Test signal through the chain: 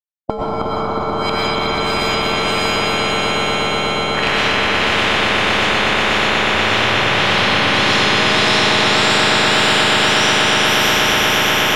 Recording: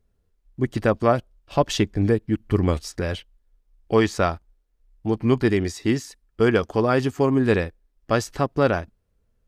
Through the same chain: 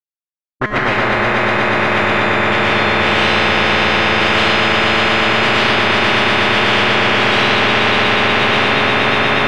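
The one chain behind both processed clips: dynamic bell 6.9 kHz, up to -6 dB, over -41 dBFS, Q 1.3; small resonant body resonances 370/610 Hz, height 6 dB, ringing for 45 ms; bit crusher 4-bit; LFO low-pass sine 1.7 Hz 310–2600 Hz; feedback comb 210 Hz, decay 1.5 s, mix 90%; on a send: echo with a slow build-up 121 ms, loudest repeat 5, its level -4 dB; on the sum: algorithmic reverb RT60 2.7 s, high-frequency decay 0.7×, pre-delay 75 ms, DRR -9 dB; spectrum-flattening compressor 10:1; trim +2.5 dB

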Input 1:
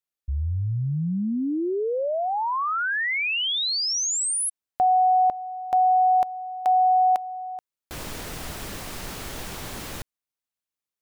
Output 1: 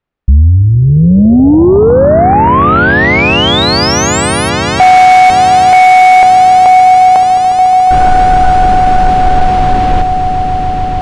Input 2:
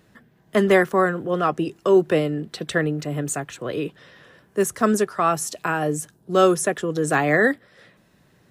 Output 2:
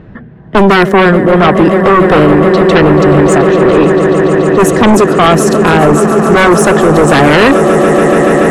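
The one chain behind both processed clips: level-controlled noise filter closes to 2.4 kHz, open at -18.5 dBFS; tilt EQ -2.5 dB/octave; on a send: echo with a slow build-up 143 ms, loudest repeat 8, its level -16 dB; on the sum: dynamic bell 110 Hz, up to -7 dB, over -34 dBFS, Q 1.1; in parallel at +2 dB: peak limiter -12.5 dBFS; on the sum: sine folder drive 10 dB, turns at 1 dBFS; trim -2.5 dB

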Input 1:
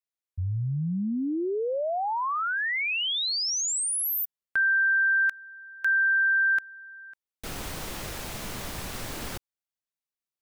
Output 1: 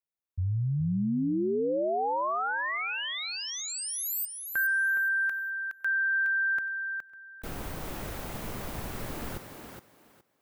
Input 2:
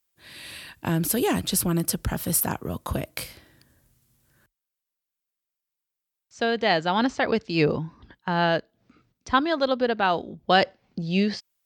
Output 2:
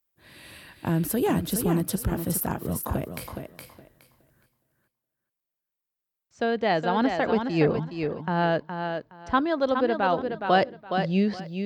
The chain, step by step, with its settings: peaking EQ 5.3 kHz -9.5 dB 2.9 oct; thinning echo 417 ms, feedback 21%, high-pass 150 Hz, level -6 dB

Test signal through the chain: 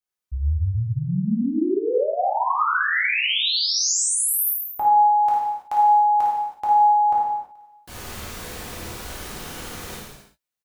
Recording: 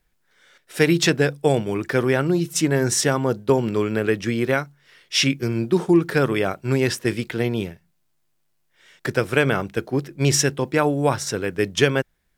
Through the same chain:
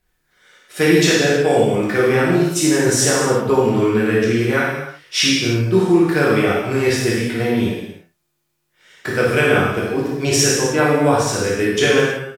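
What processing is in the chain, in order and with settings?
early reflections 54 ms -5.5 dB, 74 ms -15 dB; gated-style reverb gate 350 ms falling, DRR -5.5 dB; trim -2 dB

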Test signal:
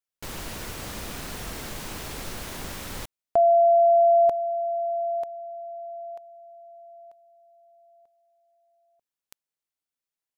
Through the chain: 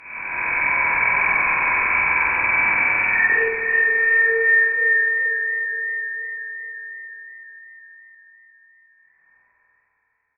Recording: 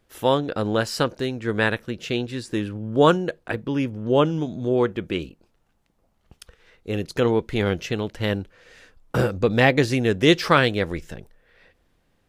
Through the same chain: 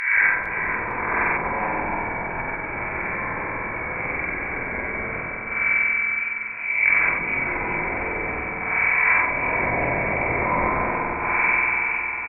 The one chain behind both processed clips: spectral blur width 441 ms; small resonant body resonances 210/1500 Hz, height 16 dB, ringing for 35 ms; in parallel at -7.5 dB: integer overflow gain 19.5 dB; on the sum: peaking EQ 860 Hz +9.5 dB 0.75 oct; doubling 21 ms -6 dB; spring tank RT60 3 s, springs 47 ms, chirp 75 ms, DRR -6.5 dB; frequency inversion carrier 2.5 kHz; low-pass that closes with the level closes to 630 Hz, closed at -8 dBFS; feedback delay 456 ms, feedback 46%, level -11 dB; modulated delay 434 ms, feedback 42%, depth 118 cents, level -17.5 dB

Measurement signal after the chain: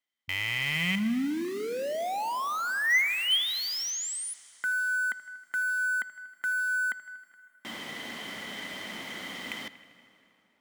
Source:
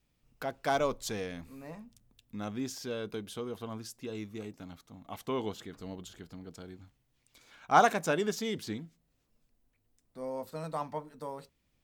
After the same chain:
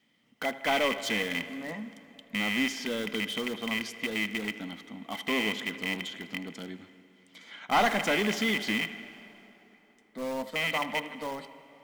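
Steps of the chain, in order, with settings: rattle on loud lows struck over -42 dBFS, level -24 dBFS; high-pass 97 Hz 12 dB/octave; peaking EQ 140 Hz -7.5 dB 1.4 oct; small resonant body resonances 210/2000/3100 Hz, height 17 dB, ringing for 25 ms; on a send: bucket-brigade echo 79 ms, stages 2048, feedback 72%, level -20 dB; on the sum: overdrive pedal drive 20 dB, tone 3.3 kHz, clips at -5.5 dBFS; in parallel at -10.5 dB: integer overflow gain 22.5 dB; on the sum: peaking EQ 390 Hz -4.5 dB 0.62 oct; plate-style reverb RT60 4 s, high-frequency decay 0.7×, DRR 16 dB; trim -8.5 dB

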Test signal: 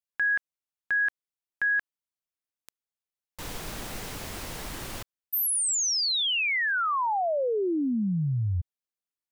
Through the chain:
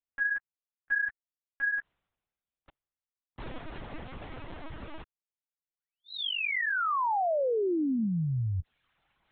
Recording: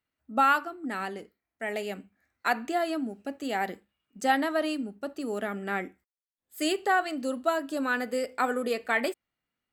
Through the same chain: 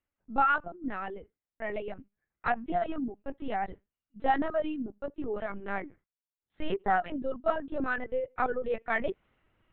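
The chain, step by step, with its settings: low-pass 1.6 kHz 6 dB/octave; reverb removal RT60 0.87 s; reverse; upward compressor, threshold -46 dBFS; reverse; LPC vocoder at 8 kHz pitch kept

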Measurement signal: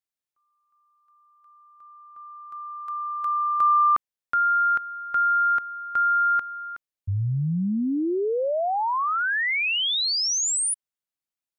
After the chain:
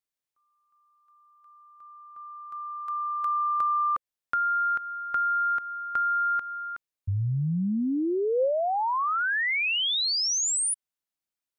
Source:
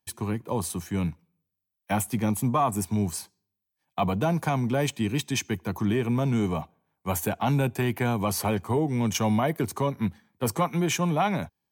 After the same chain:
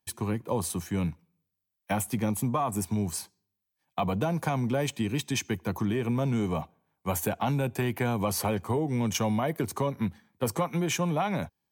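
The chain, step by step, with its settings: compression, threshold -24 dBFS; dynamic bell 520 Hz, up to +4 dB, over -48 dBFS, Q 6.9

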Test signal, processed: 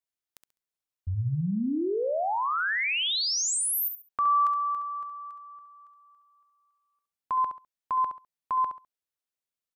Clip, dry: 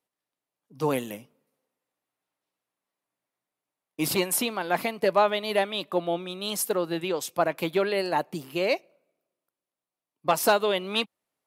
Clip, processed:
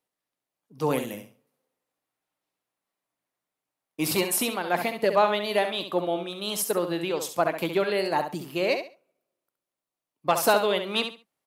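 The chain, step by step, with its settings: feedback delay 68 ms, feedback 23%, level -8 dB

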